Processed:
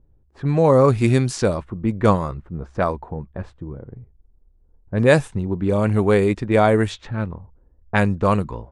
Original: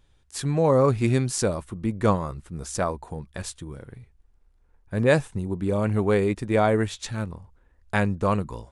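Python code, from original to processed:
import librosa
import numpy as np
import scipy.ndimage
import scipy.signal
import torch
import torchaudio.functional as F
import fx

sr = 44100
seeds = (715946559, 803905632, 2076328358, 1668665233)

y = fx.env_lowpass(x, sr, base_hz=450.0, full_db=-18.5)
y = F.gain(torch.from_numpy(y), 5.0).numpy()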